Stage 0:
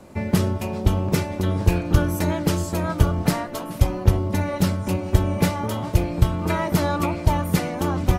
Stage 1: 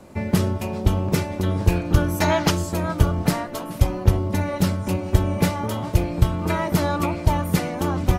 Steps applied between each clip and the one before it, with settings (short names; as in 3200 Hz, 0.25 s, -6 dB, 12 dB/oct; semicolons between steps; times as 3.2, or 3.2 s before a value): spectral gain 2.21–2.5, 620–7100 Hz +9 dB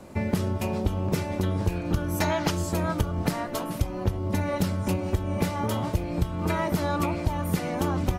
compressor 10:1, threshold -21 dBFS, peak gain reduction 13 dB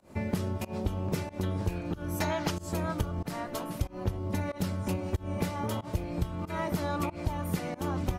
pump 93 bpm, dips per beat 1, -24 dB, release 0.153 s; gain -5 dB